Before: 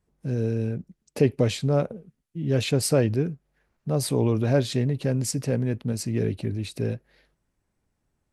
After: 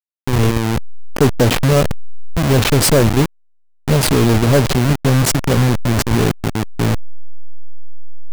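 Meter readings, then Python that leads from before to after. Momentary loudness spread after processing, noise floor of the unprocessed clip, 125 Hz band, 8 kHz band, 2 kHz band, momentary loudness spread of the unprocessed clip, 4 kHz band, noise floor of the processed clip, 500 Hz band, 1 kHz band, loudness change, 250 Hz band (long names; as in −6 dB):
10 LU, −77 dBFS, +10.0 dB, +12.0 dB, +16.0 dB, 12 LU, +13.0 dB, −51 dBFS, +8.0 dB, +17.0 dB, +10.0 dB, +10.0 dB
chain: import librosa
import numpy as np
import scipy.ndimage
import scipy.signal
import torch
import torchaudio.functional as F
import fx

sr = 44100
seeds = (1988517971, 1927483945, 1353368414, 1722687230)

y = fx.delta_hold(x, sr, step_db=-22.5)
y = fx.leveller(y, sr, passes=3)
y = y * 10.0 ** (2.5 / 20.0)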